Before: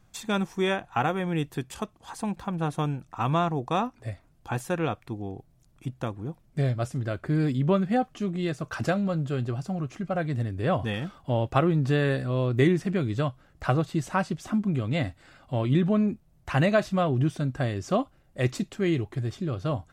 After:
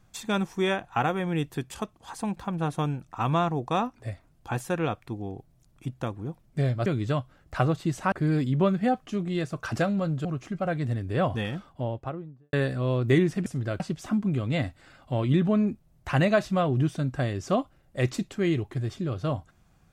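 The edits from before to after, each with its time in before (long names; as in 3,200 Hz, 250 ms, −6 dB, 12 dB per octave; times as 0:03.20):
0:06.86–0:07.20: swap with 0:12.95–0:14.21
0:09.33–0:09.74: remove
0:10.82–0:12.02: fade out and dull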